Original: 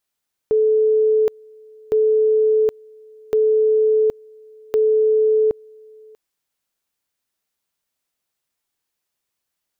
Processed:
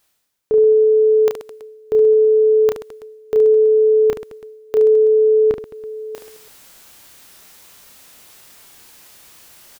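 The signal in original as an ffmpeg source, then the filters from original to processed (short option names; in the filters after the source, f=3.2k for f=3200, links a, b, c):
-f lavfi -i "aevalsrc='pow(10,(-12.5-28.5*gte(mod(t,1.41),0.77))/20)*sin(2*PI*434*t)':d=5.64:s=44100"
-af "areverse,acompressor=mode=upward:threshold=-22dB:ratio=2.5,areverse,aecho=1:1:30|72|130.8|213.1|328.4:0.631|0.398|0.251|0.158|0.1"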